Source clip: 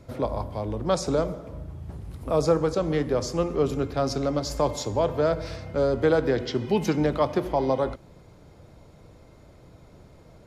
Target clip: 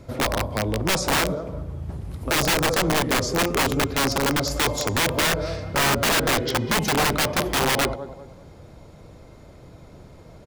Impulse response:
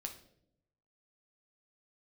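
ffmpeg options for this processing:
-filter_complex "[0:a]asplit=2[a][b];[b]adelay=196,lowpass=f=3.4k:p=1,volume=-15dB,asplit=2[c][d];[d]adelay=196,lowpass=f=3.4k:p=1,volume=0.36,asplit=2[e][f];[f]adelay=196,lowpass=f=3.4k:p=1,volume=0.36[g];[c][e][g]amix=inputs=3:normalize=0[h];[a][h]amix=inputs=2:normalize=0,aeval=exprs='(mod(10*val(0)+1,2)-1)/10':c=same,volume=5dB"

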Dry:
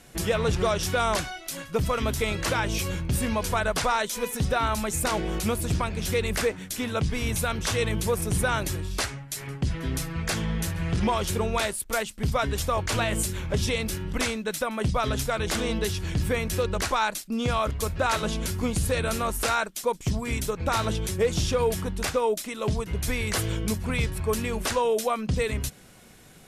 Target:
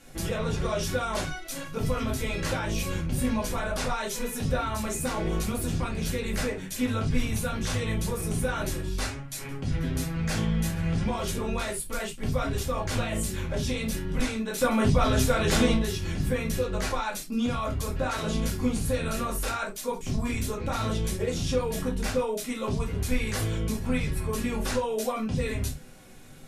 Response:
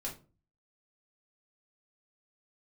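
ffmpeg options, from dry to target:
-filter_complex "[0:a]alimiter=limit=-21.5dB:level=0:latency=1:release=17,asettb=1/sr,asplit=3[a][b][c];[a]atrim=end=14.584[d];[b]atrim=start=14.58:end=15.74,asetpts=PTS-STARTPTS,afade=t=in:d=0.004:c=qsin,afade=t=out:st=1.156:d=0.004:c=qsin,acontrast=66[e];[c]atrim=start=15.736[f];[d][e]acrossfade=d=0.004:c1=hsin:c2=qsin[g];[g][f]acrossfade=d=0.004:c1=qsin:c2=hsin[h];[1:a]atrim=start_sample=2205,atrim=end_sample=4410[i];[h][i]afir=irnorm=-1:irlink=0"

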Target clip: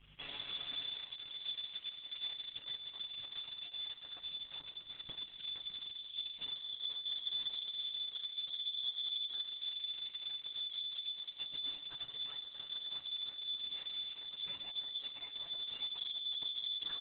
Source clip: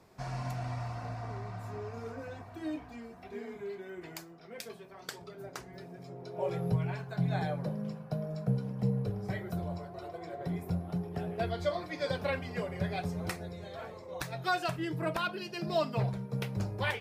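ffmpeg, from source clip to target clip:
-filter_complex "[0:a]acontrast=89,volume=20dB,asoftclip=hard,volume=-20dB,aeval=exprs='0.106*(cos(1*acos(clip(val(0)/0.106,-1,1)))-cos(1*PI/2))+0.000668*(cos(3*acos(clip(val(0)/0.106,-1,1)))-cos(3*PI/2))+0.0299*(cos(8*acos(clip(val(0)/0.106,-1,1)))-cos(8*PI/2))':c=same,asubboost=boost=7:cutoff=150,asplit=2[a][b];[b]aecho=0:1:116|198|292|614:0.168|0.133|0.141|0.251[c];[a][c]amix=inputs=2:normalize=0,lowpass=f=3k:t=q:w=0.5098,lowpass=f=3k:t=q:w=0.6013,lowpass=f=3k:t=q:w=0.9,lowpass=f=3k:t=q:w=2.563,afreqshift=-3500,tiltshelf=f=730:g=9.5,aeval=exprs='val(0)+0.00178*(sin(2*PI*50*n/s)+sin(2*PI*2*50*n/s)/2+sin(2*PI*3*50*n/s)/3+sin(2*PI*4*50*n/s)/4+sin(2*PI*5*50*n/s)/5)':c=same,areverse,acompressor=threshold=-36dB:ratio=6,areverse,aecho=1:1:7.1:0.65,volume=-5.5dB" -ar 48000 -c:a libopus -b:a 6k

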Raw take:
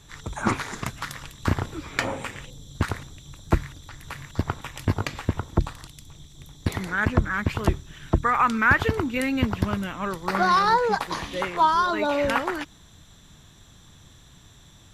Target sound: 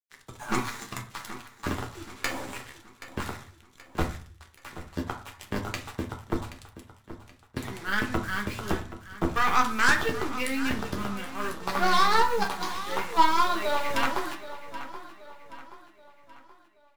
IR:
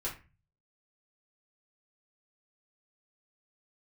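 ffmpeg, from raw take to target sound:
-filter_complex "[0:a]highpass=f=160:p=1,atempo=0.88,aeval=exprs='0.501*(cos(1*acos(clip(val(0)/0.501,-1,1)))-cos(1*PI/2))+0.158*(cos(5*acos(clip(val(0)/0.501,-1,1)))-cos(5*PI/2))+0.0355*(cos(6*acos(clip(val(0)/0.501,-1,1)))-cos(6*PI/2))+0.126*(cos(7*acos(clip(val(0)/0.501,-1,1)))-cos(7*PI/2))':c=same,flanger=delay=7:depth=7.1:regen=-29:speed=0.14:shape=triangular,acrusher=bits=6:mix=0:aa=0.5,aecho=1:1:777|1554|2331|3108:0.2|0.0918|0.0422|0.0194,asplit=2[a][b];[1:a]atrim=start_sample=2205,asetrate=32634,aresample=44100[c];[b][c]afir=irnorm=-1:irlink=0,volume=-4.5dB[d];[a][d]amix=inputs=2:normalize=0,adynamicequalizer=threshold=0.0224:dfrequency=2700:dqfactor=0.7:tfrequency=2700:tqfactor=0.7:attack=5:release=100:ratio=0.375:range=2.5:mode=boostabove:tftype=highshelf,volume=-6.5dB"

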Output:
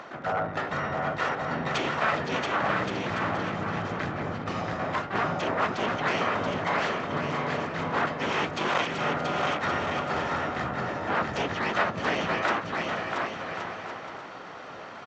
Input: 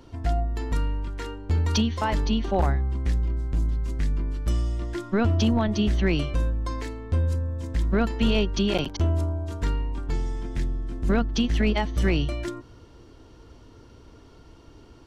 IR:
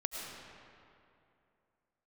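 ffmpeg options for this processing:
-filter_complex "[0:a]asplit=4[a][b][c][d];[b]asetrate=33038,aresample=44100,atempo=1.33484,volume=-3dB[e];[c]asetrate=37084,aresample=44100,atempo=1.18921,volume=-11dB[f];[d]asetrate=88200,aresample=44100,atempo=0.5,volume=-6dB[g];[a][e][f][g]amix=inputs=4:normalize=0,aecho=1:1:1.6:0.45,aresample=16000,aeval=exprs='abs(val(0))':c=same,aresample=44100,highpass=200,highshelf=f=5.4k:g=-8.5,areverse,acompressor=threshold=-36dB:ratio=5,areverse,equalizer=f=1.4k:t=o:w=2.5:g=13.5,aecho=1:1:680|1122|1409|1596|1717:0.631|0.398|0.251|0.158|0.1,volume=2dB"

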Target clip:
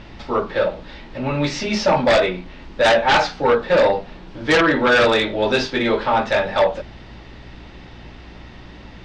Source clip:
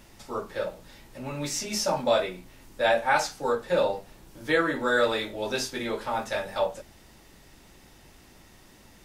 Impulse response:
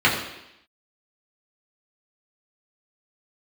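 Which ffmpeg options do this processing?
-af "lowpass=f=4.1k:w=0.5412,lowpass=f=4.1k:w=1.3066,aeval=exprs='0.316*sin(PI/2*2.82*val(0)/0.316)':c=same,aeval=exprs='val(0)+0.00794*(sin(2*PI*60*n/s)+sin(2*PI*2*60*n/s)/2+sin(2*PI*3*60*n/s)/3+sin(2*PI*4*60*n/s)/4+sin(2*PI*5*60*n/s)/5)':c=same"

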